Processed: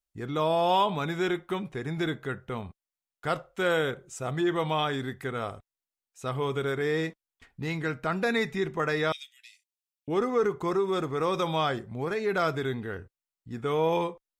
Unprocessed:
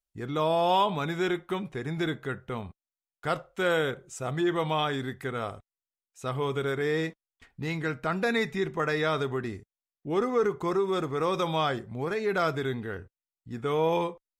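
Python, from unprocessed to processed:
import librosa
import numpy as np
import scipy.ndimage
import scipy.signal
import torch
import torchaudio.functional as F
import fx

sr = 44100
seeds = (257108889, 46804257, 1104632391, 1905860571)

y = fx.steep_highpass(x, sr, hz=2400.0, slope=48, at=(9.12, 10.08))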